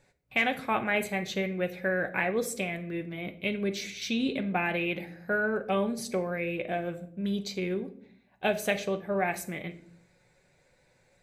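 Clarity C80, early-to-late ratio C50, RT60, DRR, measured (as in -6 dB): 18.5 dB, 14.5 dB, 0.60 s, 5.5 dB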